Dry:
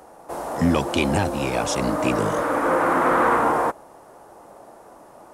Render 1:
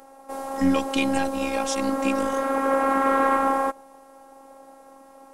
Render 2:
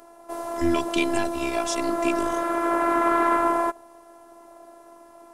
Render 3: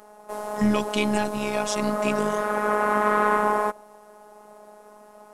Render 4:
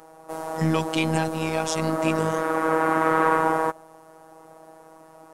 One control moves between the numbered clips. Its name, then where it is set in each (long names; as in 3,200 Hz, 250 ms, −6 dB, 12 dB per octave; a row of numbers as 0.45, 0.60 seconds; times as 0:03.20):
phases set to zero, frequency: 270, 340, 210, 160 Hertz